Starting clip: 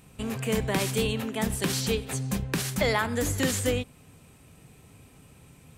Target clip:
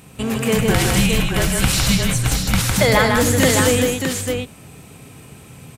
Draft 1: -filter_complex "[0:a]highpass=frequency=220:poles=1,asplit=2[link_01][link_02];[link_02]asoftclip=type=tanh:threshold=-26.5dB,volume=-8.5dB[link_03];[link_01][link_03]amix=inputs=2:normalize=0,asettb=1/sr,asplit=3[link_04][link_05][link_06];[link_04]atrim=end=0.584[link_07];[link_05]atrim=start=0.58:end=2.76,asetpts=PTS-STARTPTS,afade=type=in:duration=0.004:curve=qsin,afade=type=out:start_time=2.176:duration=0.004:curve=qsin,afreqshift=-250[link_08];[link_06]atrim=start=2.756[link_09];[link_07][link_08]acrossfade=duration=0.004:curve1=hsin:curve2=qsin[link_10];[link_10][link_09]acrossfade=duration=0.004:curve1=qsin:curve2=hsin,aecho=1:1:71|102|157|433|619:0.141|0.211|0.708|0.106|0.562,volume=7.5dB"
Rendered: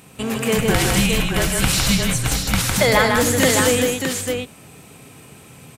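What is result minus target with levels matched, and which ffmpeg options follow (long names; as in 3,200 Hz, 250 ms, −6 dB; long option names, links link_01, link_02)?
125 Hz band −2.5 dB
-filter_complex "[0:a]highpass=frequency=76:poles=1,asplit=2[link_01][link_02];[link_02]asoftclip=type=tanh:threshold=-26.5dB,volume=-8.5dB[link_03];[link_01][link_03]amix=inputs=2:normalize=0,asettb=1/sr,asplit=3[link_04][link_05][link_06];[link_04]atrim=end=0.584[link_07];[link_05]atrim=start=0.58:end=2.76,asetpts=PTS-STARTPTS,afade=type=in:duration=0.004:curve=qsin,afade=type=out:start_time=2.176:duration=0.004:curve=qsin,afreqshift=-250[link_08];[link_06]atrim=start=2.756[link_09];[link_07][link_08]acrossfade=duration=0.004:curve1=hsin:curve2=qsin[link_10];[link_10][link_09]acrossfade=duration=0.004:curve1=qsin:curve2=hsin,aecho=1:1:71|102|157|433|619:0.141|0.211|0.708|0.106|0.562,volume=7.5dB"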